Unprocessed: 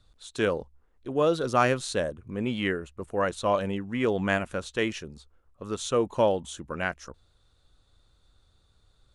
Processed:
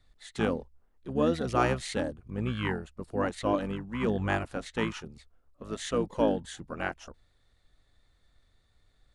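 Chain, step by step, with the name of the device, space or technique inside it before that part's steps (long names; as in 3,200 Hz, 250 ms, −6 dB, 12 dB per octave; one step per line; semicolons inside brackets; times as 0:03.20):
octave pedal (pitch-shifted copies added −12 semitones −2 dB)
level −5 dB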